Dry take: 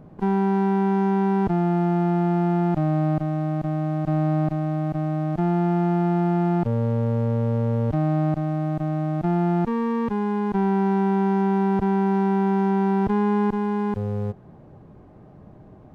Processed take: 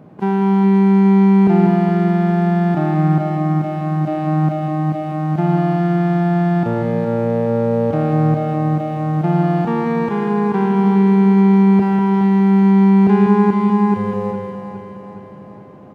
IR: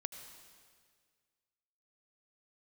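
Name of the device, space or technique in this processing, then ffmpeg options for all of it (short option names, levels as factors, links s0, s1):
PA in a hall: -filter_complex "[0:a]highpass=140,equalizer=f=2500:t=o:w=0.86:g=3,aecho=1:1:194:0.422,aecho=1:1:415|830|1245|1660|2075|2490|2905:0.335|0.188|0.105|0.0588|0.0329|0.0184|0.0103[s0];[1:a]atrim=start_sample=2205[s1];[s0][s1]afir=irnorm=-1:irlink=0,volume=2.37"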